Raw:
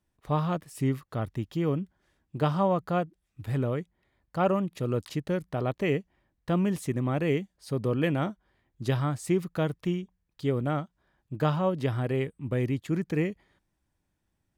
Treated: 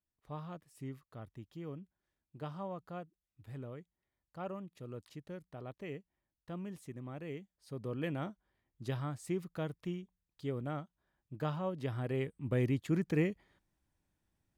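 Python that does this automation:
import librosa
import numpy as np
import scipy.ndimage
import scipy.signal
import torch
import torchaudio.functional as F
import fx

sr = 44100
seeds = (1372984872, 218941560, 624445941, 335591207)

y = fx.gain(x, sr, db=fx.line((7.33, -17.0), (8.09, -10.5), (11.75, -10.5), (12.58, -3.5)))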